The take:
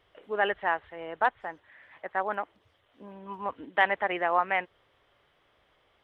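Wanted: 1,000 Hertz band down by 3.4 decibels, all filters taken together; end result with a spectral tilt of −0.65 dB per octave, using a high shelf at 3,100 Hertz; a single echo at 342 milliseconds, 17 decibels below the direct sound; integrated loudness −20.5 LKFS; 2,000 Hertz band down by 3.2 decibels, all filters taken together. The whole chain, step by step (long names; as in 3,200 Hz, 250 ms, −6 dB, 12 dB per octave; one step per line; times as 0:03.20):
parametric band 1,000 Hz −4.5 dB
parametric band 2,000 Hz −5 dB
high-shelf EQ 3,100 Hz +9 dB
single-tap delay 342 ms −17 dB
level +11.5 dB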